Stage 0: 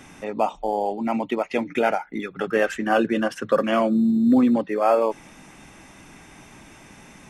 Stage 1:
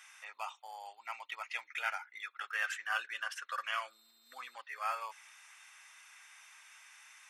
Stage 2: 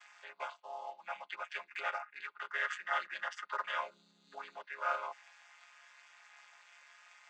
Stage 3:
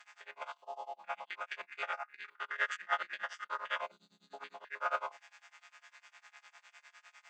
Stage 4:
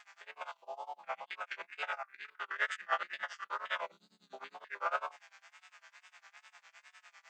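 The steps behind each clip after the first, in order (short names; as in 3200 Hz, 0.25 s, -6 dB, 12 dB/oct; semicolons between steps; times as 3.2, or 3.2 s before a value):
HPF 1200 Hz 24 dB/oct; gain -6.5 dB
chord vocoder major triad, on C#3; gain +1 dB
stepped spectrum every 50 ms; tremolo 9.9 Hz, depth 95%; gain +5.5 dB
wow and flutter 95 cents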